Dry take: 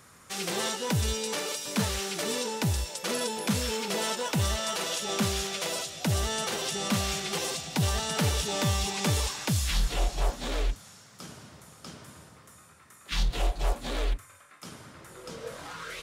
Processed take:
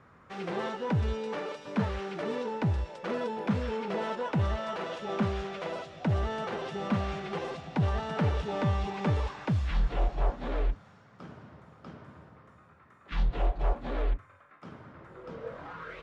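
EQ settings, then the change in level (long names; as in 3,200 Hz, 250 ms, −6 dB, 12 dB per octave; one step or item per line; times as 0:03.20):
low-pass filter 1,600 Hz 12 dB per octave
0.0 dB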